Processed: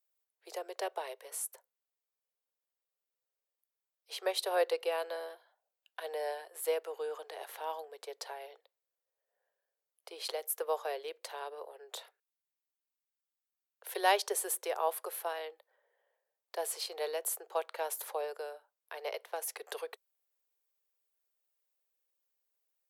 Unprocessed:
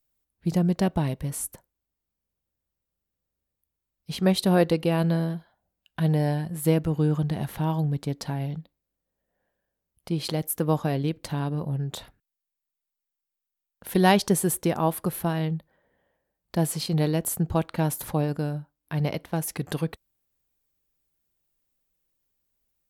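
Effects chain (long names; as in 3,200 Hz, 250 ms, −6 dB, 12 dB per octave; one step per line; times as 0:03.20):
Butterworth high-pass 410 Hz 72 dB per octave
level −6 dB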